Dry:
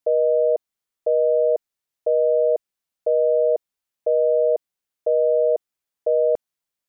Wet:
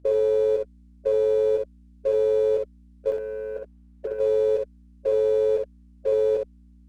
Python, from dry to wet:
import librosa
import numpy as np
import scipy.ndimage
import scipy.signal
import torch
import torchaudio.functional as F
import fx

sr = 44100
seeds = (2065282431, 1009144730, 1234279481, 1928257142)

y = fx.partial_stretch(x, sr, pct=85)
y = fx.highpass(y, sr, hz=450.0, slope=6)
y = fx.peak_eq(y, sr, hz=660.0, db=fx.steps((0.0, 2.0), (3.12, 14.0), (4.19, 4.5)), octaves=3.0)
y = fx.level_steps(y, sr, step_db=15)
y = fx.leveller(y, sr, passes=1)
y = fx.over_compress(y, sr, threshold_db=-21.0, ratio=-0.5)
y = fx.add_hum(y, sr, base_hz=60, snr_db=28)
y = fx.room_early_taps(y, sr, ms=(13, 62), db=(-10.0, -4.0))
y = fx.running_max(y, sr, window=3)
y = y * 10.0 ** (1.0 / 20.0)